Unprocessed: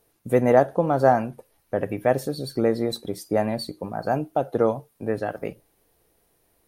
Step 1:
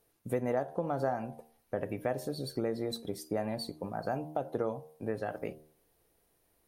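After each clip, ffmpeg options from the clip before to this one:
-af "bandreject=f=77.18:t=h:w=4,bandreject=f=154.36:t=h:w=4,bandreject=f=231.54:t=h:w=4,bandreject=f=308.72:t=h:w=4,bandreject=f=385.9:t=h:w=4,bandreject=f=463.08:t=h:w=4,bandreject=f=540.26:t=h:w=4,bandreject=f=617.44:t=h:w=4,bandreject=f=694.62:t=h:w=4,bandreject=f=771.8:t=h:w=4,bandreject=f=848.98:t=h:w=4,bandreject=f=926.16:t=h:w=4,bandreject=f=1.00334k:t=h:w=4,bandreject=f=1.08052k:t=h:w=4,acompressor=threshold=-24dB:ratio=3,volume=-6dB"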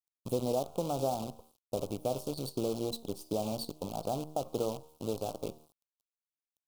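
-af "acrusher=bits=7:dc=4:mix=0:aa=0.000001,asuperstop=centerf=1800:order=4:qfactor=0.88"

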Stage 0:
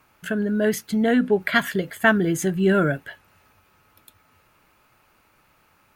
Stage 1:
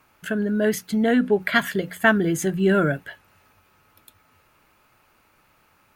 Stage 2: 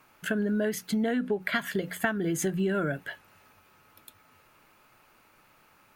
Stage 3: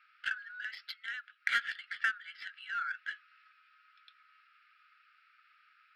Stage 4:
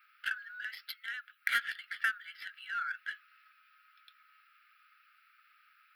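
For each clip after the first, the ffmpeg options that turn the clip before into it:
-af "bandreject=f=60:t=h:w=6,bandreject=f=120:t=h:w=6,bandreject=f=180:t=h:w=6"
-af "equalizer=f=61:w=1.5:g=-11,acompressor=threshold=-24dB:ratio=16"
-af "afftfilt=real='re*between(b*sr/4096,1200,5600)':imag='im*between(b*sr/4096,1200,5600)':win_size=4096:overlap=0.75,adynamicsmooth=sensitivity=6:basefreq=3.9k"
-af "aexciter=amount=3.6:drive=8.9:freq=9.8k"

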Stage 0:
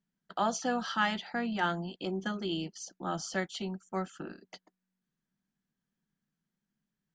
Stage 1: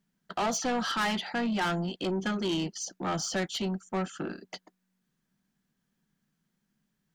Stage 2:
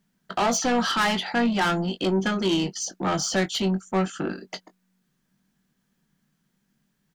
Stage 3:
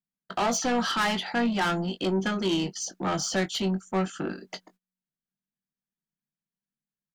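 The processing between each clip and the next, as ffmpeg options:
-af "asoftclip=type=tanh:threshold=-33dB,volume=8dB"
-filter_complex "[0:a]asplit=2[a][b];[b]adelay=21,volume=-10dB[c];[a][c]amix=inputs=2:normalize=0,volume=6dB"
-af "agate=range=-23dB:threshold=-55dB:ratio=16:detection=peak,volume=-3dB"

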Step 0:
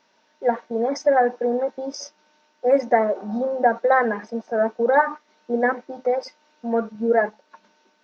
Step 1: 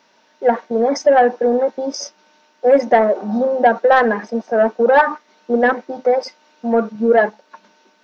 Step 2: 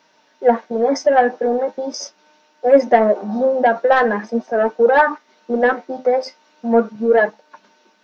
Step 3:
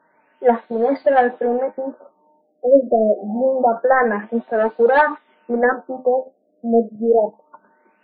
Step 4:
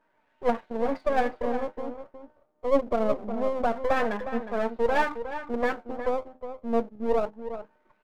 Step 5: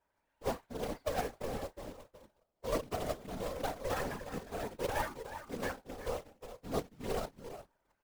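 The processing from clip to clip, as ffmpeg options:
-af "highpass=88,acontrast=78"
-af "flanger=delay=6.4:depth=5.3:regen=53:speed=0.41:shape=sinusoidal,volume=3dB"
-af "afftfilt=real='re*lt(b*sr/1024,690*pow(4800/690,0.5+0.5*sin(2*PI*0.26*pts/sr)))':imag='im*lt(b*sr/1024,690*pow(4800/690,0.5+0.5*sin(2*PI*0.26*pts/sr)))':win_size=1024:overlap=0.75,volume=-1dB"
-filter_complex "[0:a]aeval=exprs='if(lt(val(0),0),0.251*val(0),val(0))':c=same,asplit=2[a][b];[b]adelay=361.5,volume=-10dB,highshelf=f=4k:g=-8.13[c];[a][c]amix=inputs=2:normalize=0,volume=-7dB"
-af "acrusher=bits=2:mode=log:mix=0:aa=0.000001,afftfilt=real='hypot(re,im)*cos(2*PI*random(0))':imag='hypot(re,im)*sin(2*PI*random(1))':win_size=512:overlap=0.75,volume=-6dB"

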